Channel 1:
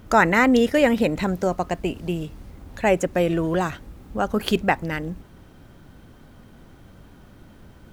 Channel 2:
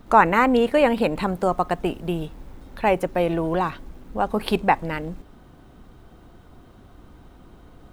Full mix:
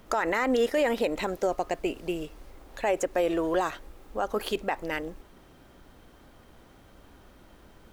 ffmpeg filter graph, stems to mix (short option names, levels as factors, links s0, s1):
-filter_complex "[0:a]highpass=350,bandreject=f=1500:w=26,volume=0.794[s0];[1:a]lowshelf=f=200:g=8.5,asoftclip=type=hard:threshold=0.299,volume=0.168[s1];[s0][s1]amix=inputs=2:normalize=0,alimiter=limit=0.158:level=0:latency=1:release=57"